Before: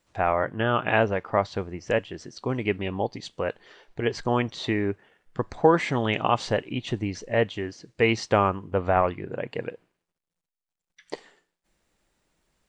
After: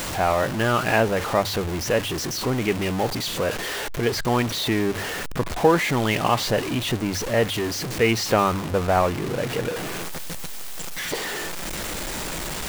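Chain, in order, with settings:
converter with a step at zero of −23.5 dBFS
mains-hum notches 50/100 Hz

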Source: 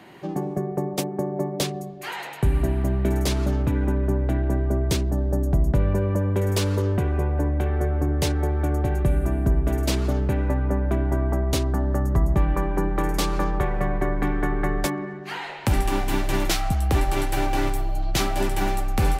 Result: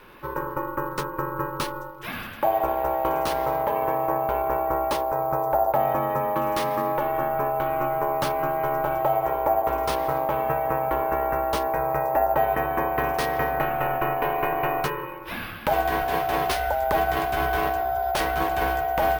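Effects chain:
parametric band 1,200 Hz +4 dB 1.8 octaves
ring modulation 720 Hz
surface crackle 130 per second −45 dBFS
high-shelf EQ 6,800 Hz −6 dB
bad sample-rate conversion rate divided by 3×, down filtered, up hold

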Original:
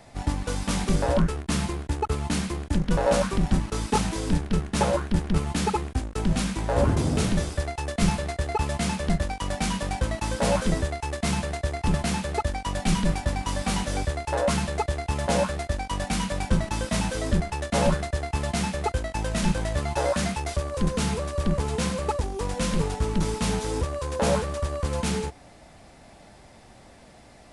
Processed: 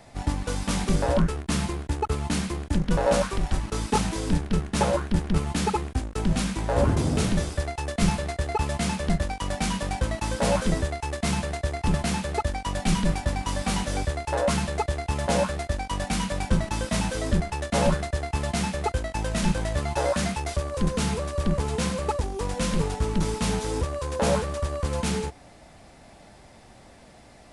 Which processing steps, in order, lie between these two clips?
0:03.21–0:03.62: parametric band 200 Hz −6 dB → −14 dB 1.1 octaves

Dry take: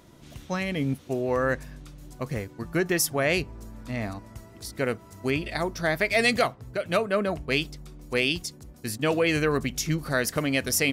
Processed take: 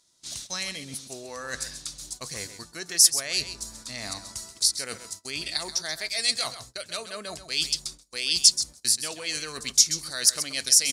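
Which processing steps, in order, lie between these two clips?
reversed playback
downward compressor 20 to 1, threshold −32 dBFS, peak gain reduction 15.5 dB
reversed playback
tilt shelving filter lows −7 dB, about 760 Hz
single-tap delay 131 ms −11.5 dB
noise gate −49 dBFS, range −21 dB
flat-topped bell 6,200 Hz +16 dB
level −1 dB

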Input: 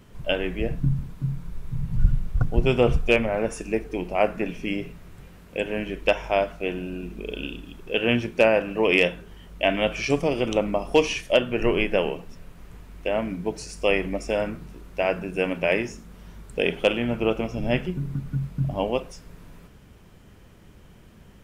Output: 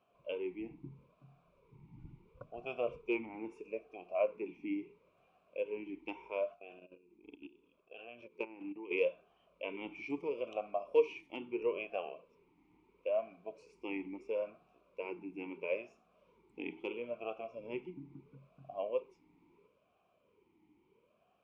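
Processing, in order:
0:06.54–0:08.91: output level in coarse steps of 16 dB
formant filter swept between two vowels a-u 0.75 Hz
level −5.5 dB

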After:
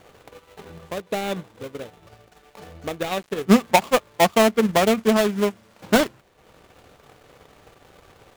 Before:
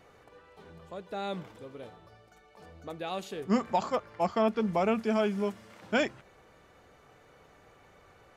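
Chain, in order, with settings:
gap after every zero crossing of 0.24 ms
transient designer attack +6 dB, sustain −8 dB
level +8.5 dB

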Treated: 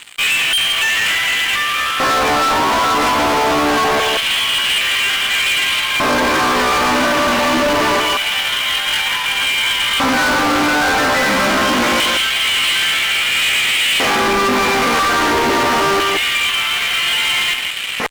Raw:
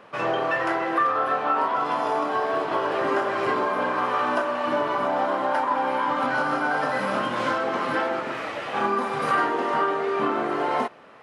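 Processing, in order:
parametric band 2,500 Hz +13.5 dB 0.92 octaves
notch filter 2,600 Hz, Q 10
brickwall limiter −17.5 dBFS, peak gain reduction 10 dB
reversed playback
upward compression, threshold −28 dBFS
reversed playback
tempo change 0.62×
auto-filter high-pass square 0.25 Hz 240–3,100 Hz
far-end echo of a speakerphone 170 ms, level −8 dB
fuzz pedal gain 35 dB, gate −45 dBFS

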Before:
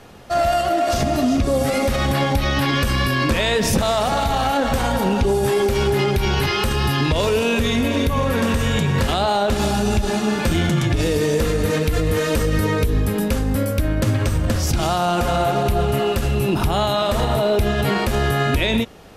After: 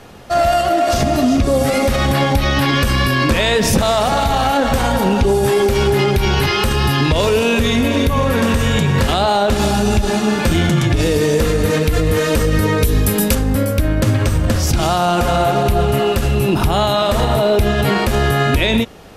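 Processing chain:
0:06.79–0:07.66: bit-depth reduction 12 bits, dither none
0:12.83–0:13.35: high-shelf EQ 3,700 Hz +11 dB
level +4 dB

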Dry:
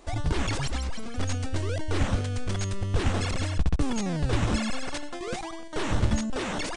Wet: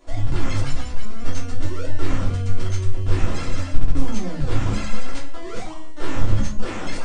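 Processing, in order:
wrong playback speed 25 fps video run at 24 fps
rectangular room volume 160 cubic metres, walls furnished, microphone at 3.1 metres
level −7 dB

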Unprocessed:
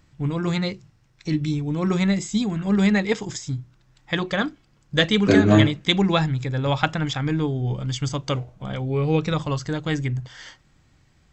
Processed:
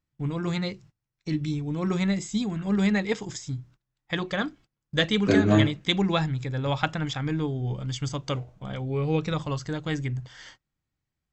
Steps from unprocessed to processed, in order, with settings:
noise gate −46 dBFS, range −21 dB
level −4.5 dB

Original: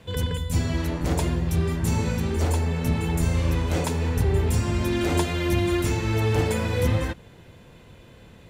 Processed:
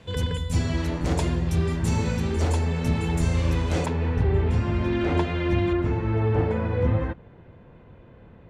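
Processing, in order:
low-pass filter 8,100 Hz 12 dB per octave, from 0:03.86 2,600 Hz, from 0:05.73 1,500 Hz

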